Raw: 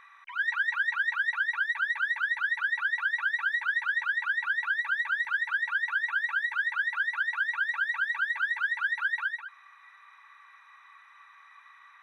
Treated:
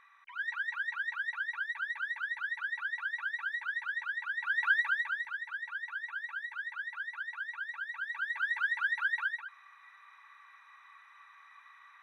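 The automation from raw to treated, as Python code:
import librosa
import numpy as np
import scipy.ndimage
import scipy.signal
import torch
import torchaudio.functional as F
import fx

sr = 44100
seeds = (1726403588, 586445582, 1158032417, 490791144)

y = fx.gain(x, sr, db=fx.line((4.34, -7.5), (4.71, 2.0), (5.38, -10.5), (7.92, -10.5), (8.55, -2.5)))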